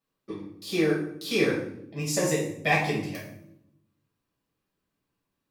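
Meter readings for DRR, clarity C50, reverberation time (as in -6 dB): -6.0 dB, 4.5 dB, 0.75 s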